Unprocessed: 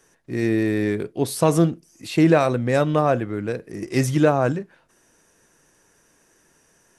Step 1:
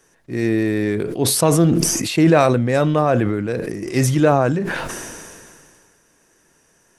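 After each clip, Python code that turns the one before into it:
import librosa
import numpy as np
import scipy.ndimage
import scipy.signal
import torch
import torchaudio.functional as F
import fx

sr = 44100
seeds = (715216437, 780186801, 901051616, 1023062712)

y = fx.sustainer(x, sr, db_per_s=27.0)
y = F.gain(torch.from_numpy(y), 1.5).numpy()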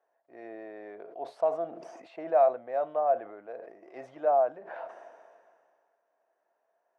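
y = fx.ladder_bandpass(x, sr, hz=720.0, resonance_pct=75)
y = F.gain(torch.from_numpy(y), -4.5).numpy()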